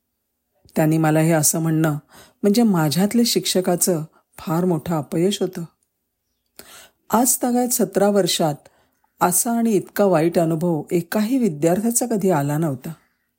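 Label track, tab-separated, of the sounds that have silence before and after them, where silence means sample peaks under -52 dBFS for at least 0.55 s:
0.650000	5.830000	sound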